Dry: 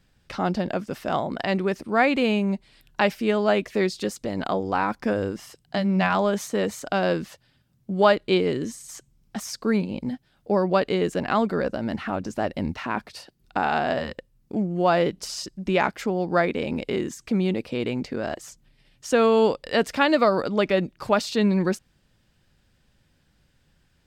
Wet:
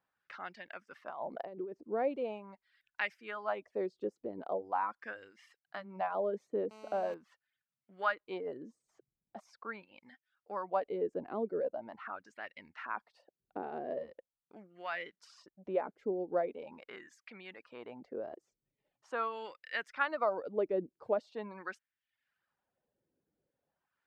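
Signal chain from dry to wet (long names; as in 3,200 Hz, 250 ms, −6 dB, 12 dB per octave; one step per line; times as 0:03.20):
reverb reduction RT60 0.63 s
0:01.10–0:01.73: compressor whose output falls as the input rises −31 dBFS, ratio −1
auto-filter band-pass sine 0.42 Hz 390–2,000 Hz
0:06.71–0:07.14: phone interference −48 dBFS
level −6 dB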